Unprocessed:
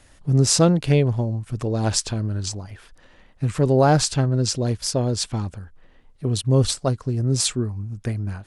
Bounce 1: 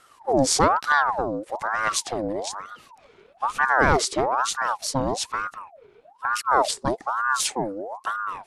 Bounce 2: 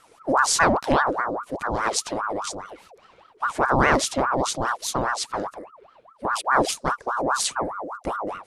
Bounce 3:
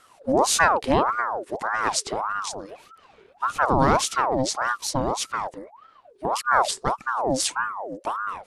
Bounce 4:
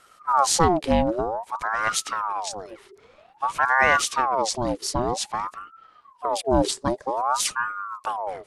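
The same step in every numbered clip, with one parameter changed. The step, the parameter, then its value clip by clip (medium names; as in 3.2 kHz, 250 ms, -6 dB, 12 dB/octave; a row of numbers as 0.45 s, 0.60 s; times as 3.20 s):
ring modulator with a swept carrier, at: 1.1 Hz, 4.9 Hz, 1.7 Hz, 0.52 Hz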